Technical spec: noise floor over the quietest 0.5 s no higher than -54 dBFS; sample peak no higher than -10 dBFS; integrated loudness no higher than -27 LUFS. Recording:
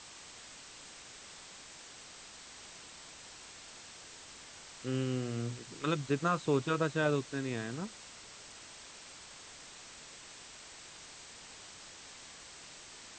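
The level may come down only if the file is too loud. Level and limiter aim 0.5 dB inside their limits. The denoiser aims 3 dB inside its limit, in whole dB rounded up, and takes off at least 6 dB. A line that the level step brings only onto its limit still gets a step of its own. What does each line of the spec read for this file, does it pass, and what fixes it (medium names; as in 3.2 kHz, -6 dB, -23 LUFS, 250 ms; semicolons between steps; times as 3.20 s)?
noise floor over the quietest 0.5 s -52 dBFS: fail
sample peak -18.0 dBFS: pass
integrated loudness -39.5 LUFS: pass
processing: noise reduction 6 dB, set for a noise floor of -52 dBFS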